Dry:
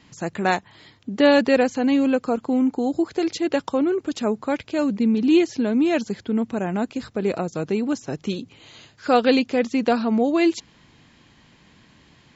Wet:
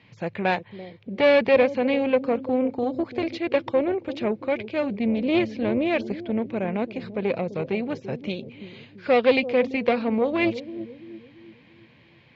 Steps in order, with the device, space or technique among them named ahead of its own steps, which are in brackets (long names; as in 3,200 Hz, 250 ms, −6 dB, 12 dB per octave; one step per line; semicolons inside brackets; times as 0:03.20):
analogue delay pedal into a guitar amplifier (bucket-brigade delay 338 ms, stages 1,024, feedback 46%, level −11 dB; tube saturation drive 14 dB, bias 0.65; loudspeaker in its box 94–4,100 Hz, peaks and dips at 110 Hz +10 dB, 290 Hz −5 dB, 530 Hz +7 dB, 1,300 Hz −4 dB, 2,300 Hz +9 dB)